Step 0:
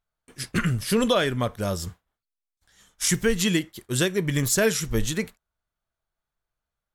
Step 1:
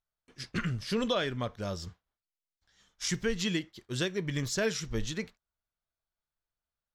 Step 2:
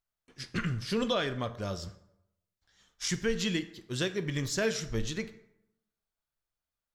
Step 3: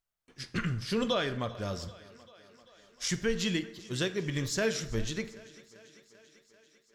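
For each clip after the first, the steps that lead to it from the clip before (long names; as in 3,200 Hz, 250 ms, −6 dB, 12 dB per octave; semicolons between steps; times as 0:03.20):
high shelf with overshoot 7,400 Hz −12 dB, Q 1.5; level −8.5 dB
dense smooth reverb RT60 0.83 s, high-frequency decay 0.6×, DRR 11 dB
feedback echo with a high-pass in the loop 391 ms, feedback 69%, high-pass 160 Hz, level −20 dB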